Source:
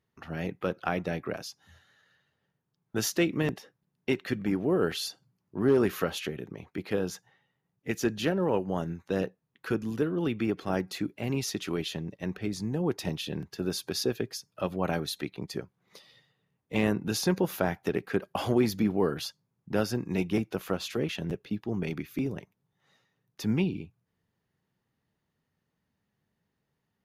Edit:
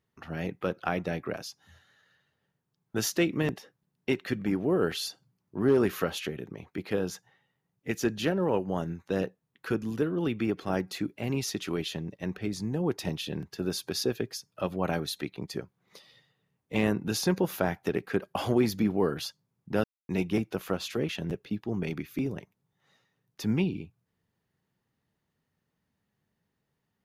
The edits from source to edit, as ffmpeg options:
ffmpeg -i in.wav -filter_complex "[0:a]asplit=3[link_01][link_02][link_03];[link_01]atrim=end=19.84,asetpts=PTS-STARTPTS,afade=type=out:start_time=19.836:duration=0.004:curve=hsin[link_04];[link_02]atrim=start=19.84:end=20.09,asetpts=PTS-STARTPTS,volume=0[link_05];[link_03]atrim=start=20.09,asetpts=PTS-STARTPTS,afade=type=in:duration=0.004:curve=hsin[link_06];[link_04][link_05][link_06]concat=n=3:v=0:a=1" out.wav

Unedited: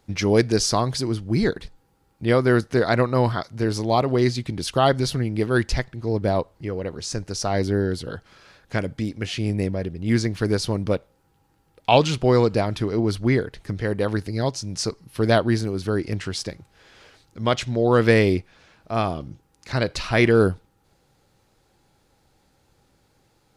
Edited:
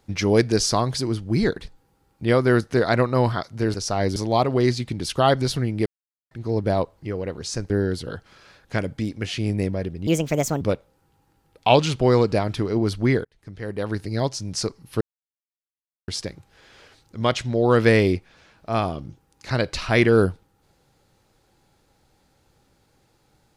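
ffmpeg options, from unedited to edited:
ffmpeg -i in.wav -filter_complex "[0:a]asplit=11[link_01][link_02][link_03][link_04][link_05][link_06][link_07][link_08][link_09][link_10][link_11];[link_01]atrim=end=3.742[link_12];[link_02]atrim=start=7.278:end=7.702[link_13];[link_03]atrim=start=3.738:end=5.44,asetpts=PTS-STARTPTS,afade=type=out:start_time=1.698:duration=0.004:curve=hsin[link_14];[link_04]atrim=start=5.44:end=5.89,asetpts=PTS-STARTPTS,volume=0[link_15];[link_05]atrim=start=5.89:end=7.282,asetpts=PTS-STARTPTS,afade=type=in:duration=0.004:curve=hsin[link_16];[link_06]atrim=start=7.698:end=10.074[link_17];[link_07]atrim=start=10.07:end=10.83,asetpts=PTS-STARTPTS,asetrate=62181,aresample=44100,atrim=end_sample=23770,asetpts=PTS-STARTPTS[link_18];[link_08]atrim=start=10.826:end=13.47,asetpts=PTS-STARTPTS,afade=type=out:start_time=2.64:duration=0.004:curve=hsin[link_19];[link_09]atrim=start=13.47:end=15.23,asetpts=PTS-STARTPTS,afade=type=in:duration=0.91,afade=type=out:start_time=1.756:duration=0.004:curve=hsin[link_20];[link_10]atrim=start=15.23:end=16.3,asetpts=PTS-STARTPTS,volume=0[link_21];[link_11]atrim=start=16.3,asetpts=PTS-STARTPTS,afade=type=in:duration=0.004:curve=hsin[link_22];[link_12][link_13]acrossfade=duration=0.004:curve1=hsin:curve2=hsin[link_23];[link_14][link_15][link_16]concat=n=3:v=0:a=1[link_24];[link_23][link_24]acrossfade=duration=0.004:curve1=hsin:curve2=hsin[link_25];[link_25][link_17]acrossfade=duration=0.004:curve1=hsin:curve2=hsin[link_26];[link_26][link_18]acrossfade=duration=0.004:curve1=hsin:curve2=hsin[link_27];[link_19][link_20][link_21][link_22]concat=n=4:v=0:a=1[link_28];[link_27][link_28]acrossfade=duration=0.004:curve1=hsin:curve2=hsin" out.wav

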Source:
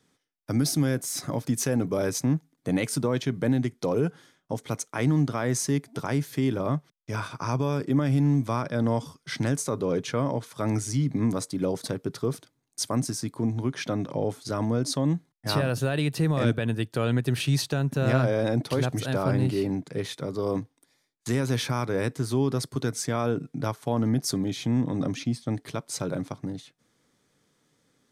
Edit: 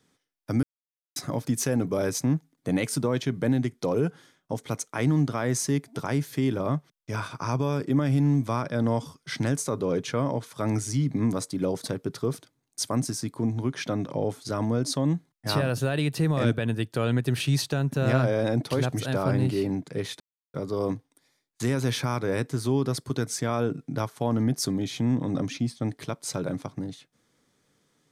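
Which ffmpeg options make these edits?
ffmpeg -i in.wav -filter_complex "[0:a]asplit=4[link_01][link_02][link_03][link_04];[link_01]atrim=end=0.63,asetpts=PTS-STARTPTS,afade=type=out:start_time=0.626:duration=0.004:curve=hsin[link_05];[link_02]atrim=start=0.63:end=1.16,asetpts=PTS-STARTPTS,volume=0[link_06];[link_03]atrim=start=1.16:end=20.2,asetpts=PTS-STARTPTS,afade=type=in:duration=0.004:curve=hsin,afade=type=out:start_time=19.036:duration=0.004:curve=hsin,apad=pad_dur=0.34[link_07];[link_04]atrim=start=20.2,asetpts=PTS-STARTPTS,afade=type=in:duration=0.004:curve=hsin[link_08];[link_05][link_06][link_07][link_08]concat=n=4:v=0:a=1" out.wav

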